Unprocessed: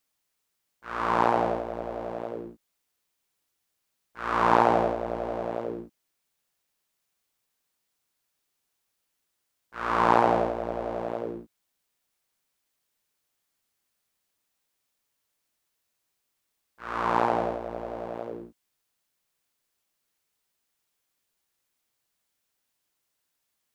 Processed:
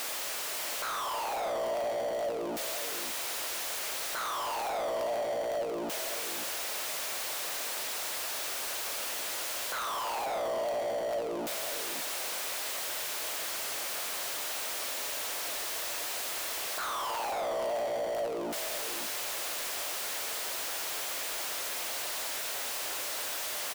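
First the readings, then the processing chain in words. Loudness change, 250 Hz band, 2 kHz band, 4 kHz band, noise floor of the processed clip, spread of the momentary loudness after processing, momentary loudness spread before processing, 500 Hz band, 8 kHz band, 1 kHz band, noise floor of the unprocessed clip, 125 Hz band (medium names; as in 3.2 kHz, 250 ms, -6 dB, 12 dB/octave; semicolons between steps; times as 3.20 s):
-5.5 dB, -9.5 dB, +1.0 dB, +14.5 dB, -36 dBFS, 1 LU, 17 LU, -2.5 dB, no reading, -7.5 dB, -79 dBFS, -15.0 dB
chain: one-bit comparator; high-pass 350 Hz 12 dB/octave; treble shelf 6.7 kHz -7.5 dB; waveshaping leveller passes 3; peaking EQ 610 Hz +5.5 dB 0.53 oct; on a send: delay 539 ms -10.5 dB; on the sum: trim -6 dB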